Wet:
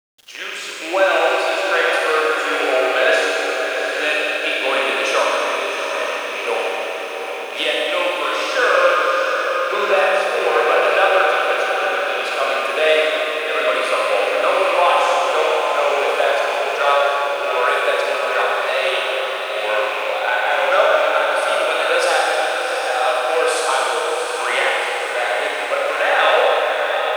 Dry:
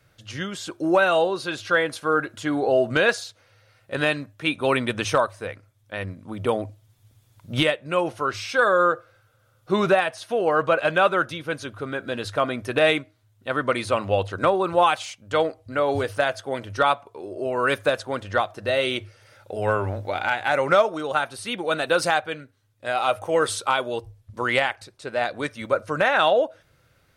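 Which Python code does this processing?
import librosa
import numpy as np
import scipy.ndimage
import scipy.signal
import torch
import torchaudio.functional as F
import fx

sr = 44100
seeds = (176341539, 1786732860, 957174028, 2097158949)

y = fx.rattle_buzz(x, sr, strikes_db=-35.0, level_db=-19.0)
y = scipy.signal.sosfilt(scipy.signal.butter(4, 440.0, 'highpass', fs=sr, output='sos'), y)
y = fx.echo_diffused(y, sr, ms=747, feedback_pct=57, wet_db=-6)
y = fx.rev_schroeder(y, sr, rt60_s=3.0, comb_ms=30, drr_db=-4.5)
y = fx.quant_dither(y, sr, seeds[0], bits=8, dither='none')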